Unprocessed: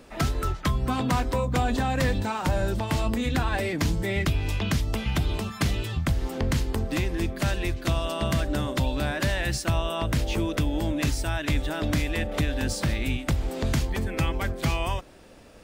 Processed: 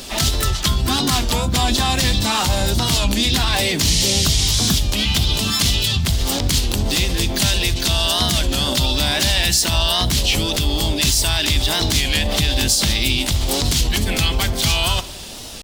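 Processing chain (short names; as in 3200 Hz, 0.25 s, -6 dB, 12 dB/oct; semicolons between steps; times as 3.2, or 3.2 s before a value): resonant high shelf 2300 Hz +11 dB, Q 1.5; spectral repair 3.89–4.76, 1700–10000 Hz; in parallel at -2 dB: negative-ratio compressor -32 dBFS, ratio -1; on the sum: thirty-one-band EQ 125 Hz -6 dB, 315 Hz -7 dB, 500 Hz -7 dB, 2500 Hz -4 dB; on a send: darkening echo 75 ms, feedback 51%, low-pass 1200 Hz, level -19 dB; on the sum: spring tank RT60 1.4 s, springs 55 ms, chirp 65 ms, DRR 19 dB; harmoniser +5 st -8 dB, +7 st -15 dB; maximiser +9 dB; record warp 33 1/3 rpm, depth 160 cents; gain -4.5 dB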